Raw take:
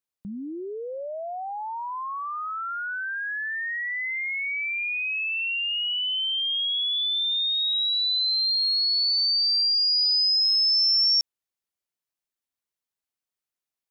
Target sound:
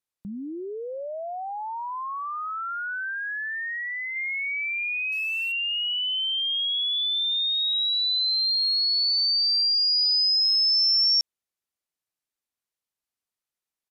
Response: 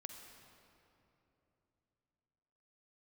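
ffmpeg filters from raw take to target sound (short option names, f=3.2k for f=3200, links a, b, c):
-filter_complex "[0:a]asettb=1/sr,asplit=3[a][b][c];[a]atrim=end=3.114[d];[b]atrim=start=3.11:end=4.16,asetpts=PTS-STARTPTS,afade=t=in:d=0.004:c=qsin,afade=t=out:st=1.046:d=0.004:c=qsin,equalizer=f=2.3k:w=3.8:g=-4.5[e];[c]atrim=start=4.156[f];[d][e]acrossfade=d=0.004:c1=hsin:c2=qsin[g];[g][f]acrossfade=d=0.004:c1=qsin:c2=hsin,asettb=1/sr,asplit=3[h][i][j];[h]atrim=end=5.124[k];[i]atrim=start=5.12:end=5.52,asetpts=PTS-STARTPTS,afade=t=in:d=0.004:c=qsin,afade=t=out:st=0.396:d=0.004:c=qsin,acrusher=bits=5:mode=log:mix=0:aa=0.000001[l];[j]atrim=start=5.516[m];[k][l]acrossfade=d=0.004:c1=hsin:c2=qsin[n];[n][m]acrossfade=d=0.004:c1=qsin:c2=hsin,aresample=32000,aresample=44100"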